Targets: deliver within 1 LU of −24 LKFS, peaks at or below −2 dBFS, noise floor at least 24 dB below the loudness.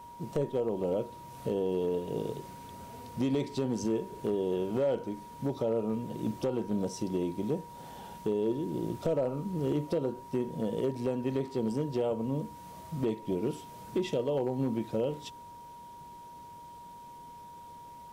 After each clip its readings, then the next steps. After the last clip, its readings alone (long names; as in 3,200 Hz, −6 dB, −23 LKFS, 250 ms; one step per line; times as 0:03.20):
share of clipped samples 0.4%; peaks flattened at −22.0 dBFS; interfering tone 950 Hz; level of the tone −46 dBFS; integrated loudness −33.0 LKFS; sample peak −22.0 dBFS; target loudness −24.0 LKFS
→ clipped peaks rebuilt −22 dBFS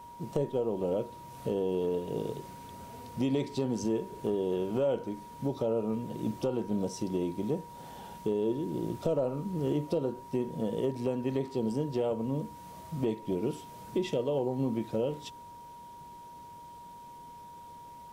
share of clipped samples 0.0%; interfering tone 950 Hz; level of the tone −46 dBFS
→ notch filter 950 Hz, Q 30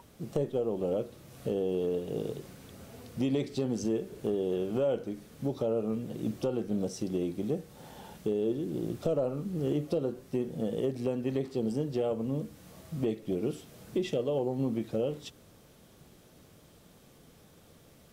interfering tone none found; integrated loudness −33.0 LKFS; sample peak −16.0 dBFS; target loudness −24.0 LKFS
→ level +9 dB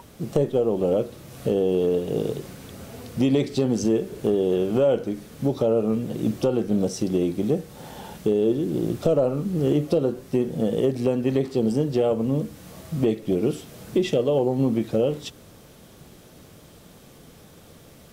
integrated loudness −24.0 LKFS; sample peak −7.0 dBFS; background noise floor −49 dBFS